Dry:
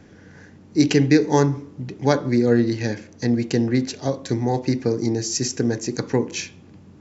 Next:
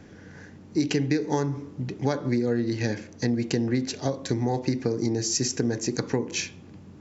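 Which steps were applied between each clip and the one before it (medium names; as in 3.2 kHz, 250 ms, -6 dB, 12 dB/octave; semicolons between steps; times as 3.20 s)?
compression 6:1, threshold -21 dBFS, peak gain reduction 11 dB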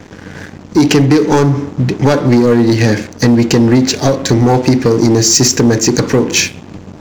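waveshaping leveller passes 3; trim +7.5 dB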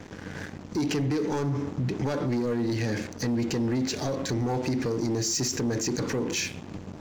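peak limiter -13.5 dBFS, peak gain reduction 11.5 dB; trim -8.5 dB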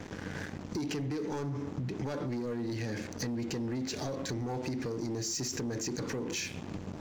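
compression 6:1, threshold -33 dBFS, peak gain reduction 8.5 dB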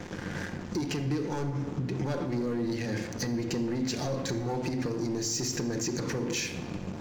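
simulated room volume 3200 m³, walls mixed, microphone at 0.9 m; trim +3 dB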